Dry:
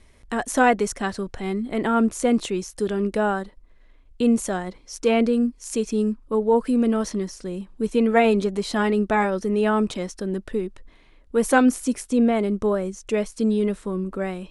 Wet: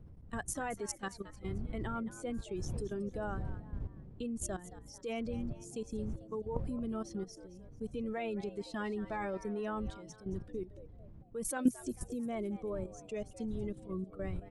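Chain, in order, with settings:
spectral dynamics exaggerated over time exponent 1.5
wind on the microphone 99 Hz −32 dBFS
high-shelf EQ 6,800 Hz +5 dB
output level in coarse steps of 15 dB
echo with shifted repeats 222 ms, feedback 39%, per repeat +110 Hz, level −15.5 dB
level −7 dB

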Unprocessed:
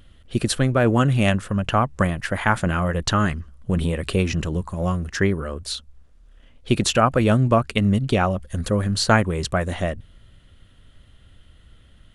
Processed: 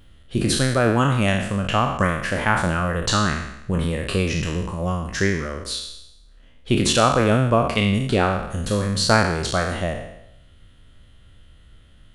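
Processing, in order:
peak hold with a decay on every bin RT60 0.83 s
level −2 dB

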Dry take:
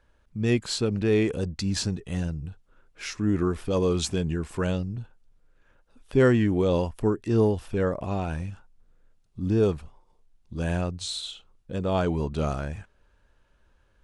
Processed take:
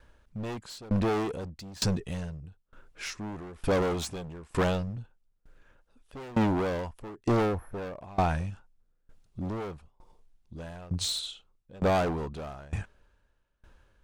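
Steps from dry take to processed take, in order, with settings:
healed spectral selection 0:07.48–0:07.94, 1,900–9,700 Hz after
gain into a clipping stage and back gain 28.5 dB
dynamic equaliser 870 Hz, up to +5 dB, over −45 dBFS, Q 1.3
tremolo with a ramp in dB decaying 1.1 Hz, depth 24 dB
level +7.5 dB

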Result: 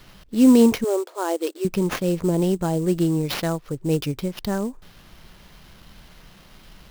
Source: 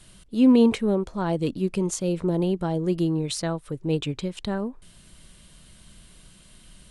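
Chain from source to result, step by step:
0:03.57–0:04.30: high-shelf EQ 9,000 Hz → 4,800 Hz −10.5 dB
sample-rate reduction 8,200 Hz, jitter 20%
0:00.84–0:01.65: linear-phase brick-wall high-pass 310 Hz
level +3 dB

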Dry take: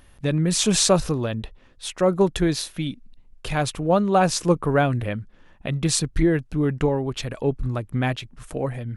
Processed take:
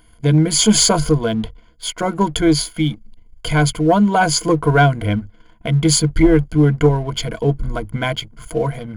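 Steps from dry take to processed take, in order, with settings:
EQ curve with evenly spaced ripples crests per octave 1.8, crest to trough 18 dB
leveller curve on the samples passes 1

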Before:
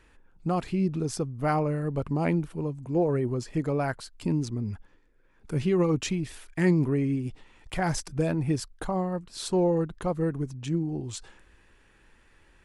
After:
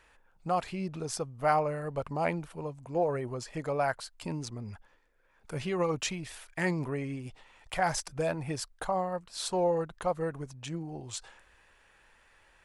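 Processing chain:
low shelf with overshoot 450 Hz −8.5 dB, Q 1.5

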